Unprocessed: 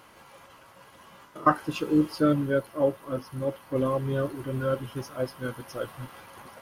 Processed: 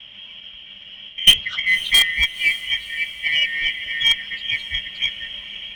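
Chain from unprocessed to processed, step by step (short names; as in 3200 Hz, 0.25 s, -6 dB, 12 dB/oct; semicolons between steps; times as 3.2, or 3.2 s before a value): four-band scrambler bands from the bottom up 2143; gate with hold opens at -47 dBFS; synth low-pass 2800 Hz, resonance Q 14; low shelf 180 Hz +8 dB; in parallel at -8 dB: wrapped overs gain 5 dB; on the sum: tube stage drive -1 dB, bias 0.25; varispeed +15%; on a send: diffused feedback echo 0.528 s, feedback 49%, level -15.5 dB; on the sum: gain -3.5 dB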